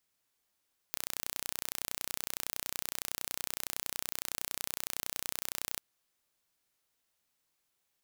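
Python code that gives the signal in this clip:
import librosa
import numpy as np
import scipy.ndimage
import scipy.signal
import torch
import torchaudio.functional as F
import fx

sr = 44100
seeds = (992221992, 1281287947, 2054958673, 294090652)

y = 10.0 ** (-8.0 / 20.0) * (np.mod(np.arange(round(4.84 * sr)), round(sr / 30.8)) == 0)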